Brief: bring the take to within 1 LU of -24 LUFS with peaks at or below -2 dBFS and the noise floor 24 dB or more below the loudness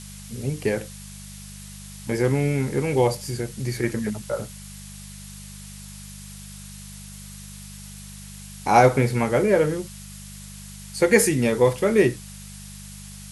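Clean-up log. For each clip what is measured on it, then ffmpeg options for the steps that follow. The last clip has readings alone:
hum 50 Hz; harmonics up to 200 Hz; hum level -41 dBFS; noise floor -40 dBFS; noise floor target -46 dBFS; loudness -22.0 LUFS; peak -2.5 dBFS; loudness target -24.0 LUFS
-> -af "bandreject=f=50:t=h:w=4,bandreject=f=100:t=h:w=4,bandreject=f=150:t=h:w=4,bandreject=f=200:t=h:w=4"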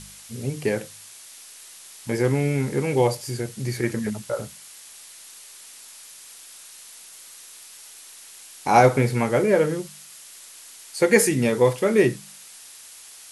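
hum none; noise floor -45 dBFS; noise floor target -46 dBFS
-> -af "afftdn=nr=6:nf=-45"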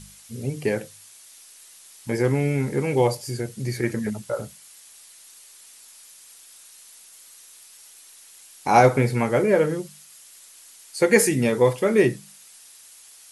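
noise floor -49 dBFS; loudness -22.0 LUFS; peak -2.5 dBFS; loudness target -24.0 LUFS
-> -af "volume=-2dB"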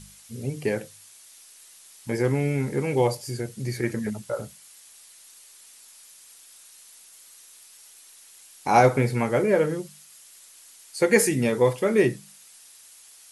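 loudness -24.0 LUFS; peak -4.5 dBFS; noise floor -51 dBFS

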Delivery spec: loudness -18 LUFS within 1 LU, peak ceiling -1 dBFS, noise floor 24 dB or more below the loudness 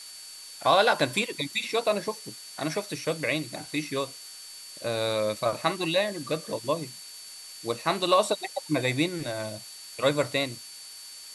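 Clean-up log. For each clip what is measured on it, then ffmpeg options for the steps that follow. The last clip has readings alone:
steady tone 4500 Hz; tone level -45 dBFS; noise floor -44 dBFS; noise floor target -52 dBFS; loudness -27.5 LUFS; peak -9.0 dBFS; loudness target -18.0 LUFS
-> -af "bandreject=f=4.5k:w=30"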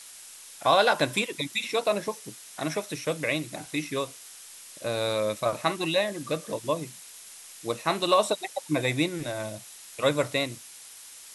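steady tone none; noise floor -47 dBFS; noise floor target -52 dBFS
-> -af "afftdn=nr=6:nf=-47"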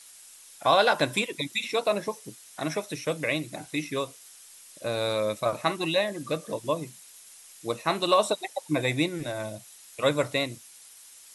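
noise floor -51 dBFS; noise floor target -52 dBFS
-> -af "afftdn=nr=6:nf=-51"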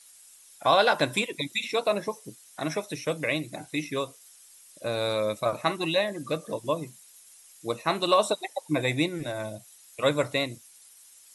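noise floor -54 dBFS; loudness -28.0 LUFS; peak -9.0 dBFS; loudness target -18.0 LUFS
-> -af "volume=10dB,alimiter=limit=-1dB:level=0:latency=1"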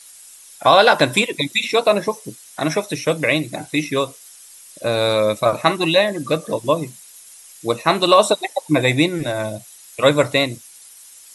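loudness -18.0 LUFS; peak -1.0 dBFS; noise floor -44 dBFS

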